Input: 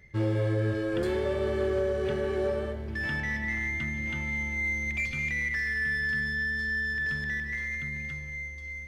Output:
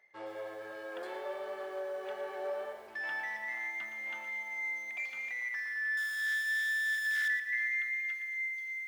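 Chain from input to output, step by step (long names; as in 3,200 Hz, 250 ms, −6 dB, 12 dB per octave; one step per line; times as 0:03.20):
0:05.97–0:07.28: sign of each sample alone
high-shelf EQ 4,600 Hz −6.5 dB
hum removal 49.5 Hz, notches 4
speech leveller within 3 dB 0.5 s
high-pass filter sweep 750 Hz → 1,800 Hz, 0:05.31–0:06.47
feedback echo at a low word length 116 ms, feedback 35%, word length 8 bits, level −11 dB
level −7.5 dB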